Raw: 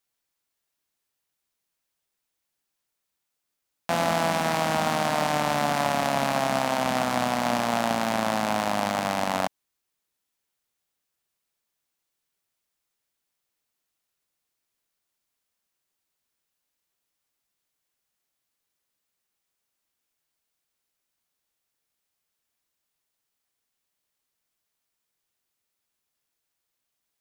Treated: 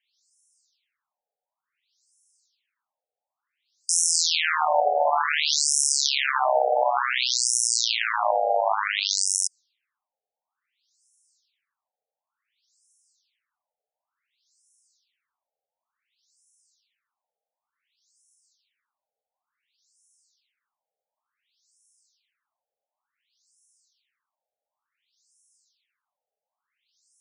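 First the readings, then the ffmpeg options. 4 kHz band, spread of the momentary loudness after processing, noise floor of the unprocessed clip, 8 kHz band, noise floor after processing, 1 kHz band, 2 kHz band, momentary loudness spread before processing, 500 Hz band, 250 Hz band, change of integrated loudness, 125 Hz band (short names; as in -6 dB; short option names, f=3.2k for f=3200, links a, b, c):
+8.5 dB, 4 LU, -82 dBFS, +14.5 dB, under -85 dBFS, +0.5 dB, +2.5 dB, 2 LU, +0.5 dB, under -40 dB, +3.5 dB, under -40 dB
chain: -af "afreqshift=-46,crystalizer=i=5:c=0,afftfilt=real='re*between(b*sr/1024,590*pow(7600/590,0.5+0.5*sin(2*PI*0.56*pts/sr))/1.41,590*pow(7600/590,0.5+0.5*sin(2*PI*0.56*pts/sr))*1.41)':imag='im*between(b*sr/1024,590*pow(7600/590,0.5+0.5*sin(2*PI*0.56*pts/sr))/1.41,590*pow(7600/590,0.5+0.5*sin(2*PI*0.56*pts/sr))*1.41)':win_size=1024:overlap=0.75,volume=5.5dB"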